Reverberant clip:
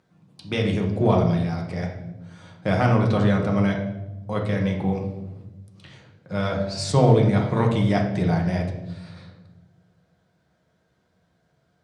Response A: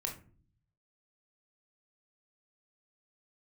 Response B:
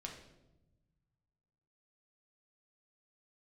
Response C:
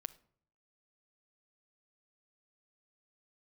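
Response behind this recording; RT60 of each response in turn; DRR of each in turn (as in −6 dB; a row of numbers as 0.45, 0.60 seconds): B; 0.45, 1.0, 0.60 seconds; 1.0, 0.0, 12.5 decibels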